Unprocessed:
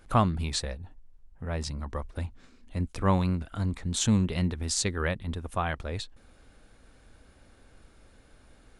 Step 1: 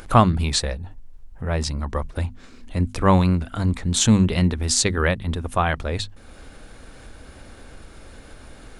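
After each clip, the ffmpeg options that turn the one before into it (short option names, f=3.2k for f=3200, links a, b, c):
-filter_complex "[0:a]bandreject=f=50:t=h:w=6,bandreject=f=100:t=h:w=6,bandreject=f=150:t=h:w=6,bandreject=f=200:t=h:w=6,bandreject=f=250:t=h:w=6,asplit=2[a][b];[b]acompressor=mode=upward:threshold=-36dB:ratio=2.5,volume=-1.5dB[c];[a][c]amix=inputs=2:normalize=0,volume=3.5dB"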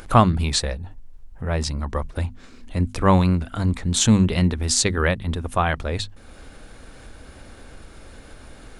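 -af anull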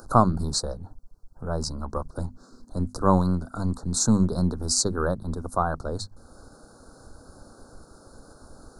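-filter_complex "[0:a]acrossover=split=130[a][b];[a]aeval=exprs='max(val(0),0)':c=same[c];[b]asuperstop=centerf=2500:order=12:qfactor=0.93[d];[c][d]amix=inputs=2:normalize=0,volume=-3dB"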